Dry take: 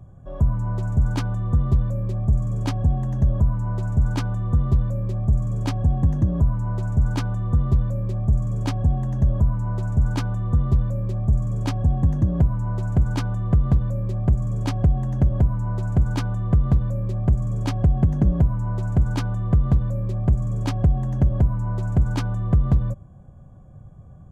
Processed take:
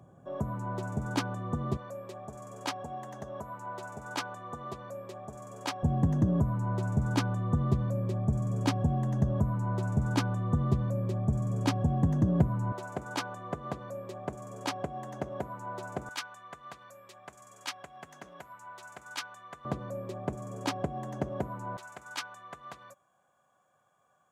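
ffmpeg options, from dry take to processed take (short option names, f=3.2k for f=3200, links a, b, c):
-af "asetnsamples=n=441:p=0,asendcmd='1.77 highpass f 580;5.83 highpass f 160;12.72 highpass f 480;16.09 highpass f 1400;19.65 highpass f 360;21.77 highpass f 1300',highpass=250"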